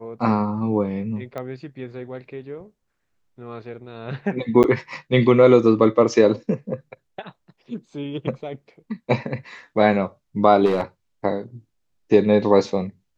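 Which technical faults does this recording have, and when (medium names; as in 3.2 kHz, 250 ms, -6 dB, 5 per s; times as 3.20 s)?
1.38 s: pop -19 dBFS
4.63–4.64 s: dropout 9 ms
10.65–10.82 s: clipped -16 dBFS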